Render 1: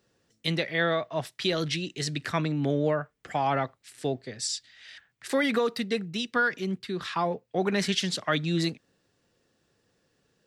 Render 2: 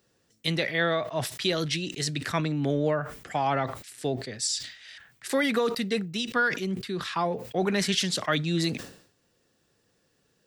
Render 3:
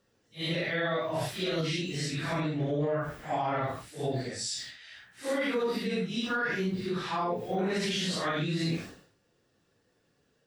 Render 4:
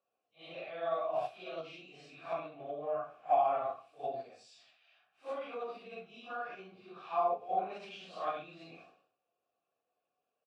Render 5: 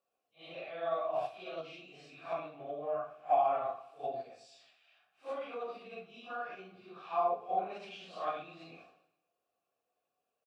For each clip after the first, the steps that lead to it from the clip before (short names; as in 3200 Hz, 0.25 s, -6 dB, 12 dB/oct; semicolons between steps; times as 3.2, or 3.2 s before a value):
de-esser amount 45%; high shelf 7700 Hz +7.5 dB; sustainer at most 97 dB/s
phase scrambler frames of 0.2 s; high shelf 4400 Hz -8.5 dB; limiter -21.5 dBFS, peak gain reduction 9 dB
vowel filter a; echo 0.15 s -20.5 dB; upward expander 1.5:1, over -51 dBFS; gain +8.5 dB
feedback echo 0.116 s, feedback 51%, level -20 dB